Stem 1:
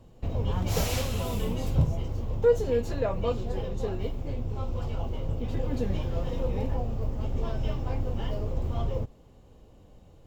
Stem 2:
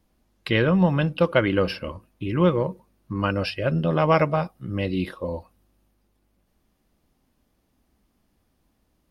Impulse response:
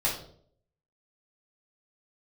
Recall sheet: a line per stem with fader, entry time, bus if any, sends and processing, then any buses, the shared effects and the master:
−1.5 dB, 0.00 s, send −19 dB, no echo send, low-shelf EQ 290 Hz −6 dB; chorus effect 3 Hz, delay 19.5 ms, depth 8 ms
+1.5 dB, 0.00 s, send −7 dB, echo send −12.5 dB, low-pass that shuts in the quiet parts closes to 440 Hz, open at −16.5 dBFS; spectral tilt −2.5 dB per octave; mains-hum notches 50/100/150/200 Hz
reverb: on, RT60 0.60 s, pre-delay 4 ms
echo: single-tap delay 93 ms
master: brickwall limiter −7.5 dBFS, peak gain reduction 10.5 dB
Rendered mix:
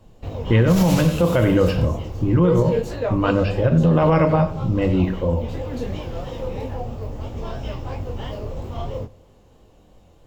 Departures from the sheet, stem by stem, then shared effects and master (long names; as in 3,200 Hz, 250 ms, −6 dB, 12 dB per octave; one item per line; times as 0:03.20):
stem 1 −1.5 dB → +8.0 dB
reverb return −7.5 dB